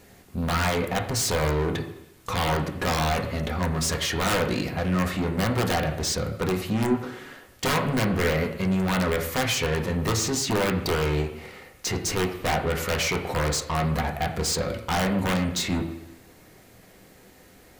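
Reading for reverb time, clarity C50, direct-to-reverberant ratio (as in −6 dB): 0.85 s, 9.5 dB, 2.0 dB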